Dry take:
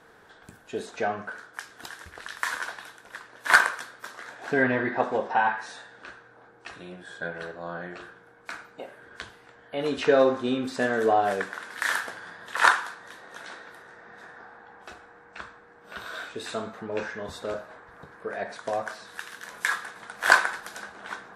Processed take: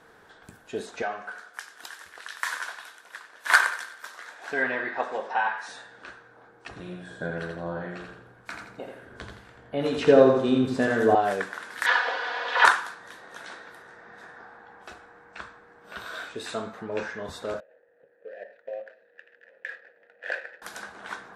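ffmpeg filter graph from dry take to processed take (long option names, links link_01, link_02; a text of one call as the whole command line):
ffmpeg -i in.wav -filter_complex "[0:a]asettb=1/sr,asplit=3[link_01][link_02][link_03];[link_01]atrim=end=1.024[link_04];[link_02]atrim=start=1.02:end=5.68,asetpts=PTS-STARTPTS,afade=type=in:duration=0.004:curve=qsin,afade=type=out:start_time=4.656:duration=0.004:curve=qsin,highpass=frequency=810:poles=1,aecho=1:1:93|186|279|372|465:0.188|0.0923|0.0452|0.0222|0.0109,atrim=end_sample=205506[link_05];[link_03]atrim=start=5.676[link_06];[link_04][link_05]acrossfade=duration=0.004:curve1=hsin:curve2=qsin[link_07];[link_07][link_06]acrossfade=duration=0.004:curve1=qsin:curve2=hsin,asettb=1/sr,asplit=3[link_08][link_09][link_10];[link_08]atrim=end=6.684[link_11];[link_09]atrim=start=6.68:end=11.15,asetpts=PTS-STARTPTS,afade=type=in:duration=0.004:curve=qsin,afade=type=out:start_time=4.466:duration=0.004:curve=qsin,acrossover=split=1000[link_12][link_13];[link_12]aeval=exprs='val(0)*(1-0.5/2+0.5/2*cos(2*PI*2*n/s))':channel_layout=same[link_14];[link_13]aeval=exprs='val(0)*(1-0.5/2-0.5/2*cos(2*PI*2*n/s))':channel_layout=same[link_15];[link_14][link_15]amix=inputs=2:normalize=0,lowshelf=frequency=370:gain=10.5,aecho=1:1:84|168|252|336|420:0.562|0.219|0.0855|0.0334|0.013,atrim=end_sample=197127[link_16];[link_10]atrim=start=11.146[link_17];[link_11][link_16]acrossfade=duration=0.004:curve1=hsin:curve2=qsin[link_18];[link_18][link_17]acrossfade=duration=0.004:curve1=qsin:curve2=hsin,asettb=1/sr,asplit=3[link_19][link_20][link_21];[link_19]atrim=end=11.864[link_22];[link_20]atrim=start=11.86:end=12.65,asetpts=PTS-STARTPTS,afade=type=in:duration=0.004:curve=qsin,afade=type=out:start_time=0.786:duration=0.004:curve=qsin,aeval=exprs='val(0)+0.5*0.0282*sgn(val(0))':channel_layout=same,highpass=frequency=370:width=0.5412,highpass=frequency=370:width=1.3066,equalizer=frequency=570:width_type=q:width=4:gain=5,equalizer=frequency=870:width_type=q:width=4:gain=6,equalizer=frequency=3000:width_type=q:width=4:gain=3,lowpass=frequency=4300:width=0.5412,lowpass=frequency=4300:width=1.3066,aecho=1:1:4.1:0.92,atrim=end_sample=34839[link_23];[link_21]atrim=start=12.646[link_24];[link_22][link_23]acrossfade=duration=0.004:curve1=hsin:curve2=qsin[link_25];[link_25][link_24]acrossfade=duration=0.004:curve1=qsin:curve2=hsin,asettb=1/sr,asplit=3[link_26][link_27][link_28];[link_26]atrim=end=17.604[link_29];[link_27]atrim=start=17.6:end=20.62,asetpts=PTS-STARTPTS,afade=type=in:duration=0.004:curve=qsin,afade=type=out:start_time=3.016:duration=0.004:curve=qsin,adynamicsmooth=sensitivity=6.5:basefreq=990,asplit=3[link_30][link_31][link_32];[link_30]bandpass=frequency=530:width_type=q:width=8,volume=0dB[link_33];[link_31]bandpass=frequency=1840:width_type=q:width=8,volume=-6dB[link_34];[link_32]bandpass=frequency=2480:width_type=q:width=8,volume=-9dB[link_35];[link_33][link_34][link_35]amix=inputs=3:normalize=0[link_36];[link_28]atrim=start=20.616[link_37];[link_29][link_36]acrossfade=duration=0.004:curve1=hsin:curve2=qsin[link_38];[link_38][link_37]acrossfade=duration=0.004:curve1=qsin:curve2=hsin" out.wav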